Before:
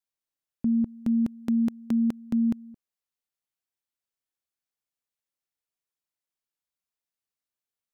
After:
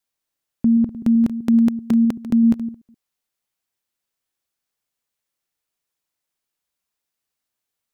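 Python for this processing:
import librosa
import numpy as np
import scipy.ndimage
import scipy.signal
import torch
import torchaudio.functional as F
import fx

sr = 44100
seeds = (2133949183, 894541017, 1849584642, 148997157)

y = fx.reverse_delay(x, sr, ms=128, wet_db=-13)
y = y * librosa.db_to_amplitude(8.5)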